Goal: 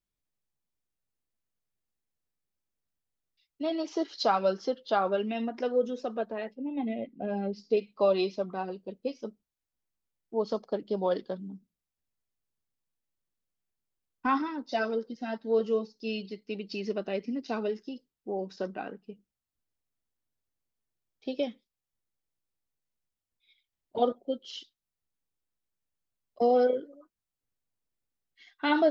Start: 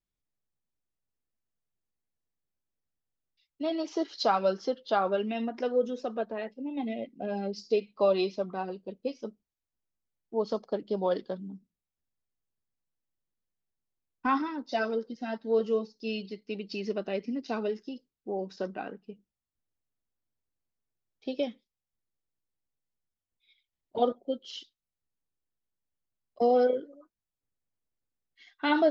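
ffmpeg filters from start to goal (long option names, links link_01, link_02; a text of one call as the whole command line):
ffmpeg -i in.wav -filter_complex "[0:a]asettb=1/sr,asplit=3[link_01][link_02][link_03];[link_01]atrim=end=6.554[link_04];[link_02]atrim=start=6.55:end=7.77,asetpts=PTS-STARTPTS,afade=type=in:duration=0.004:curve=qsin,afade=type=out:start_time=1.216:duration=0.004:curve=qsin,bass=frequency=250:gain=3,treble=frequency=4000:gain=-13[link_05];[link_03]atrim=start=7.766[link_06];[link_04][link_05]acrossfade=duration=0.004:curve1=hsin:curve2=qsin[link_07];[link_07][link_06]acrossfade=duration=0.004:curve1=qsin:curve2=hsin" out.wav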